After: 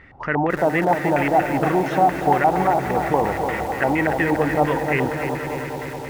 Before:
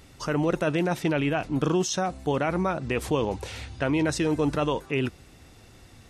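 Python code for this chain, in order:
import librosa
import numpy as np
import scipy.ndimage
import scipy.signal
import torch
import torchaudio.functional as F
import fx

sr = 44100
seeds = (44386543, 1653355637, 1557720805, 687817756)

y = fx.echo_swell(x, sr, ms=103, loudest=5, wet_db=-15.0)
y = fx.filter_lfo_lowpass(y, sr, shape='square', hz=4.3, low_hz=820.0, high_hz=1900.0, q=7.2)
y = fx.echo_crushed(y, sr, ms=294, feedback_pct=55, bits=6, wet_db=-7.5)
y = y * 10.0 ** (1.0 / 20.0)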